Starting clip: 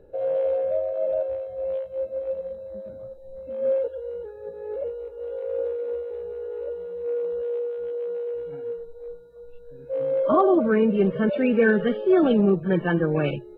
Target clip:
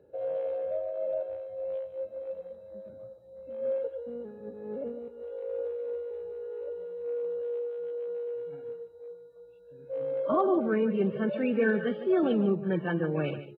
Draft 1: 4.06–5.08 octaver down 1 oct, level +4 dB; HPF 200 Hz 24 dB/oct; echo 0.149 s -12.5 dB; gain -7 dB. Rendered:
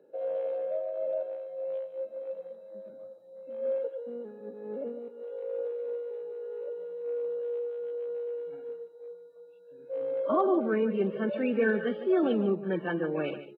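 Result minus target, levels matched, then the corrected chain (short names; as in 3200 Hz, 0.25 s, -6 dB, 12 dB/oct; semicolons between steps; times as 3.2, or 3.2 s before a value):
125 Hz band -5.0 dB
4.06–5.08 octaver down 1 oct, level +4 dB; HPF 83 Hz 24 dB/oct; echo 0.149 s -12.5 dB; gain -7 dB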